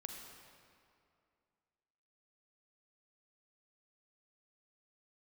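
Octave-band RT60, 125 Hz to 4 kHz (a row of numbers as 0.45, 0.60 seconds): 2.4, 2.5, 2.5, 2.4, 2.0, 1.7 seconds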